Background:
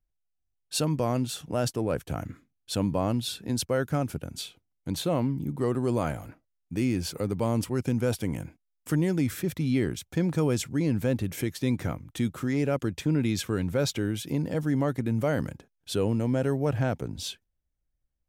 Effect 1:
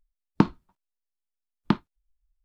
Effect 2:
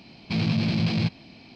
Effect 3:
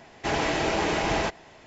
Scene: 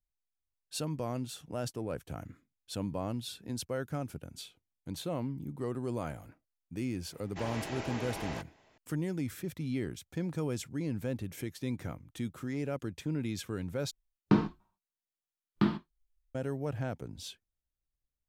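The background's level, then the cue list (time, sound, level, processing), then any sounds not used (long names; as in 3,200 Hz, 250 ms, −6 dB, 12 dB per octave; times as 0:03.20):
background −9 dB
0:07.12: mix in 3 −14.5 dB
0:13.91: overwrite with 1 −10 dB + reverb whose tail is shaped and stops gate 170 ms falling, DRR −4.5 dB
not used: 2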